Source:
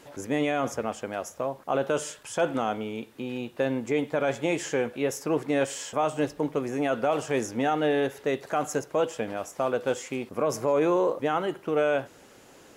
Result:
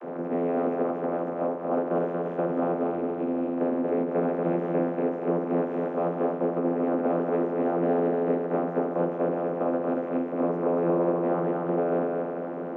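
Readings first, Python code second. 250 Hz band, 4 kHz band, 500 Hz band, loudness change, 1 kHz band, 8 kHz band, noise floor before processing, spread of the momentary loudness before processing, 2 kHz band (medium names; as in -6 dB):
+3.5 dB, under -20 dB, +1.5 dB, +1.0 dB, -0.5 dB, under -35 dB, -53 dBFS, 8 LU, -8.5 dB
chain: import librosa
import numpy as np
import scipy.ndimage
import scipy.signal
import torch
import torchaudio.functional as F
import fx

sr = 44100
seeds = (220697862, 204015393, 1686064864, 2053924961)

p1 = fx.bin_compress(x, sr, power=0.4)
p2 = scipy.signal.sosfilt(scipy.signal.butter(2, 1400.0, 'lowpass', fs=sr, output='sos'), p1)
p3 = p2 + fx.echo_feedback(p2, sr, ms=234, feedback_pct=47, wet_db=-3.0, dry=0)
p4 = fx.vocoder(p3, sr, bands=32, carrier='saw', carrier_hz=85.9)
p5 = fx.end_taper(p4, sr, db_per_s=100.0)
y = p5 * 10.0 ** (-5.0 / 20.0)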